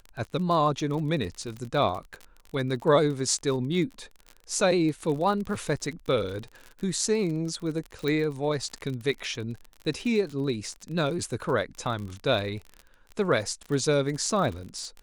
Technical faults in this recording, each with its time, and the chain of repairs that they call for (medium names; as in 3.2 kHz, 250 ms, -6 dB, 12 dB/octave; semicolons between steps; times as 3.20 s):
crackle 38 per s -33 dBFS
8.08 s: pop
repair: de-click